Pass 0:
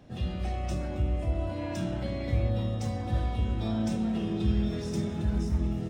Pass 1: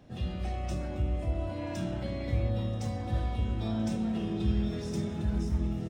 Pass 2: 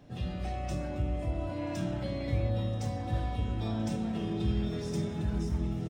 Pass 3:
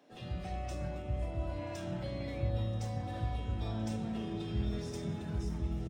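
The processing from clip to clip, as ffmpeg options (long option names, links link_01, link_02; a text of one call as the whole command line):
ffmpeg -i in.wav -af "aecho=1:1:982:0.0794,volume=-2dB" out.wav
ffmpeg -i in.wav -af "aecho=1:1:6.9:0.3" out.wav
ffmpeg -i in.wav -filter_complex "[0:a]acrossover=split=250[link_01][link_02];[link_01]adelay=100[link_03];[link_03][link_02]amix=inputs=2:normalize=0,volume=-3.5dB" out.wav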